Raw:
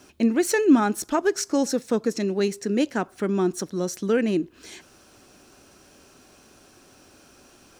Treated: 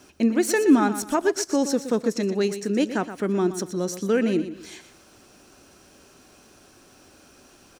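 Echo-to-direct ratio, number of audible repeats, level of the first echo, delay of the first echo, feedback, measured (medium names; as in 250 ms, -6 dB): -11.0 dB, 3, -11.5 dB, 121 ms, 31%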